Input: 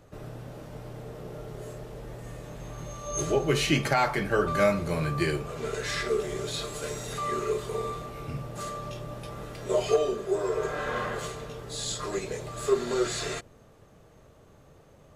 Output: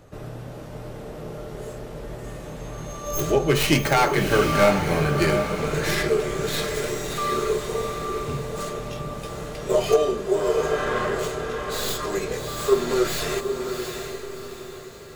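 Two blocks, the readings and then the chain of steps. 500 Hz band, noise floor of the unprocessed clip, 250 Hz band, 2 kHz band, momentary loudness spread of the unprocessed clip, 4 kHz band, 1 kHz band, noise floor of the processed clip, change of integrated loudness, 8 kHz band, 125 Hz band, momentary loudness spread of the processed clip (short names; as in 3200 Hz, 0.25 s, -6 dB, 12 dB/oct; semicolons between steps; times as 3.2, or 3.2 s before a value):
+6.0 dB, -56 dBFS, +6.0 dB, +6.0 dB, 17 LU, +5.5 dB, +6.0 dB, -38 dBFS, +6.0 dB, +4.5 dB, +5.5 dB, 17 LU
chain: tracing distortion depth 0.13 ms; diffused feedback echo 0.729 s, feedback 42%, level -6 dB; gain +5 dB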